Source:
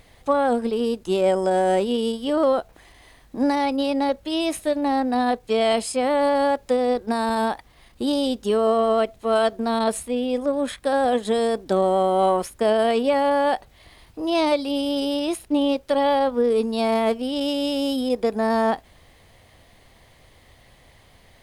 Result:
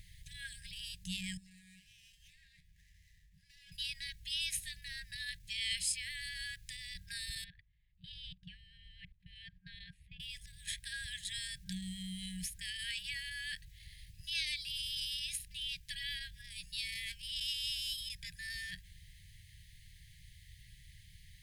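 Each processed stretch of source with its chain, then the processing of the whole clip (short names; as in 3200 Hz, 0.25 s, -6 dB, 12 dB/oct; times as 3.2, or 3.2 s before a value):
1.37–3.72 compressor 2:1, threshold -37 dBFS + resonator 84 Hz, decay 0.66 s, mix 70% + running maximum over 9 samples
7.44–10.2 level quantiser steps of 23 dB + air absorption 410 m
whole clip: passive tone stack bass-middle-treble 6-0-2; FFT band-reject 190–1600 Hz; gain +11 dB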